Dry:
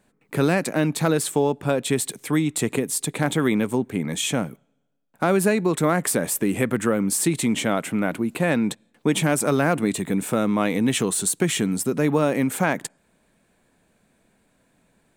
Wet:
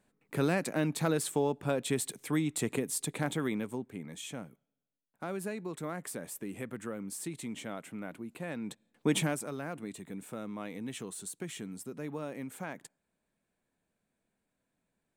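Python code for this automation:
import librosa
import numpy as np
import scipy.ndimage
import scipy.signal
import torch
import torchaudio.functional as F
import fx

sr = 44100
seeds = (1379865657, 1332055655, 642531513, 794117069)

y = fx.gain(x, sr, db=fx.line((3.1, -9.0), (4.14, -18.0), (8.56, -18.0), (9.16, -6.0), (9.49, -19.0)))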